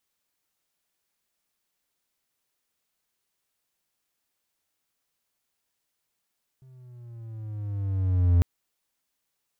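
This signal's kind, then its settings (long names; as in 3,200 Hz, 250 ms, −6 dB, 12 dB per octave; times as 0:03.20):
pitch glide with a swell triangle, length 1.80 s, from 132 Hz, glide −7.5 semitones, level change +34 dB, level −13 dB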